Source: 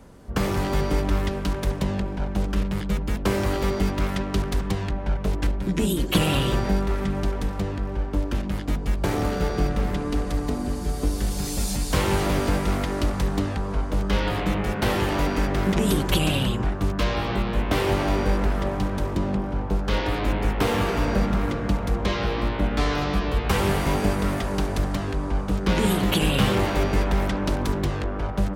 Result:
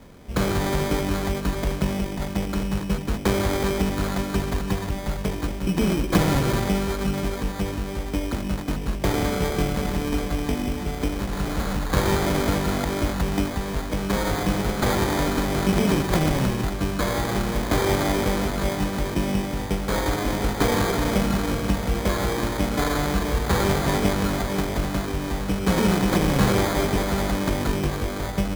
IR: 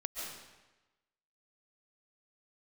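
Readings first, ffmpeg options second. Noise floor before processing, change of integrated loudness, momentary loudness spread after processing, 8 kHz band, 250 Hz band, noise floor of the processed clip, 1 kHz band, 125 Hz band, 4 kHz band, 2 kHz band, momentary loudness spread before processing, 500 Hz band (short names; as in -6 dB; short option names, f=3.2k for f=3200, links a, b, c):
-30 dBFS, +0.5 dB, 7 LU, +3.0 dB, +1.5 dB, -30 dBFS, +1.0 dB, 0.0 dB, 0.0 dB, +1.0 dB, 6 LU, +1.5 dB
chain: -af "bandreject=f=50:t=h:w=6,bandreject=f=100:t=h:w=6,acrusher=samples=16:mix=1:aa=0.000001,volume=1.5dB"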